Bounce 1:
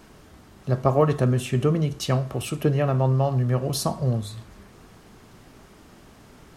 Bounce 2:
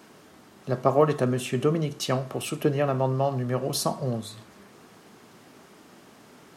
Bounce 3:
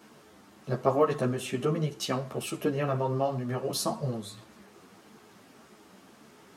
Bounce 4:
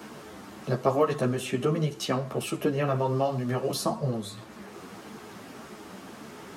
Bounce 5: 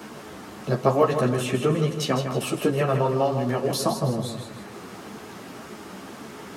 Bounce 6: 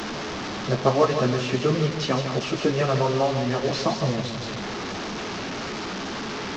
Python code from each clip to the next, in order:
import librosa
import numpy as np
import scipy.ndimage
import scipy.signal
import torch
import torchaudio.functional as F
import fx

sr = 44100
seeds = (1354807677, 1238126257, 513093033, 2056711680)

y1 = scipy.signal.sosfilt(scipy.signal.butter(2, 190.0, 'highpass', fs=sr, output='sos'), x)
y2 = fx.ensemble(y1, sr)
y3 = fx.band_squash(y2, sr, depth_pct=40)
y3 = F.gain(torch.from_numpy(y3), 2.5).numpy()
y4 = fx.echo_feedback(y3, sr, ms=158, feedback_pct=44, wet_db=-8.0)
y4 = F.gain(torch.from_numpy(y4), 3.5).numpy()
y5 = fx.delta_mod(y4, sr, bps=32000, step_db=-25.0)